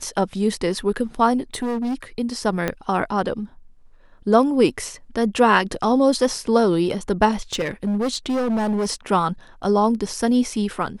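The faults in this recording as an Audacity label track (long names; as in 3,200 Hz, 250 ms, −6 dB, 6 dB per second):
1.540000	2.030000	clipping −21 dBFS
2.680000	2.680000	click −8 dBFS
7.310000	8.920000	clipping −18.5 dBFS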